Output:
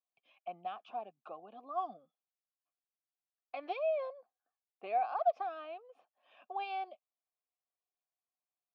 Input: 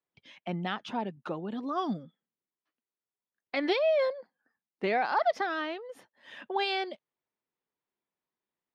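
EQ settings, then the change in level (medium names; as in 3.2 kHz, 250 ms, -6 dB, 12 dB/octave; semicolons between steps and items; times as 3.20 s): vowel filter a; bass shelf 80 Hz -9.5 dB; 0.0 dB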